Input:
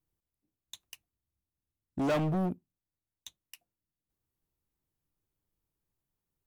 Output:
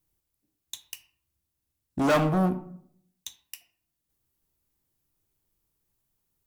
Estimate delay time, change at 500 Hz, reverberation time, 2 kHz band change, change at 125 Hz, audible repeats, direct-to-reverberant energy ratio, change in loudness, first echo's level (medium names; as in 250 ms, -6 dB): no echo, +6.5 dB, 0.65 s, +9.5 dB, +5.0 dB, no echo, 8.5 dB, +6.5 dB, no echo